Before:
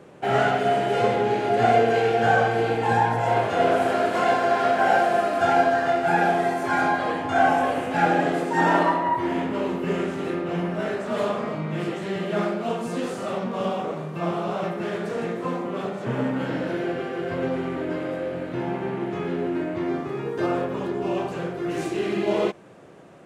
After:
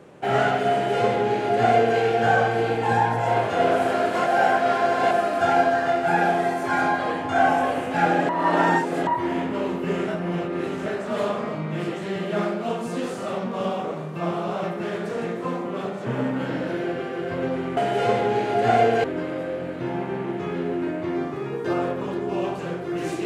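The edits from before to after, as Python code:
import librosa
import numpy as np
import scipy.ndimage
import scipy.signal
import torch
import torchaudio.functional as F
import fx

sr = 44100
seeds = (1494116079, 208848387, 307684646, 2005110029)

y = fx.edit(x, sr, fx.duplicate(start_s=0.72, length_s=1.27, to_s=17.77),
    fx.reverse_span(start_s=4.26, length_s=0.85),
    fx.reverse_span(start_s=8.29, length_s=0.78),
    fx.reverse_span(start_s=10.08, length_s=0.78), tone=tone)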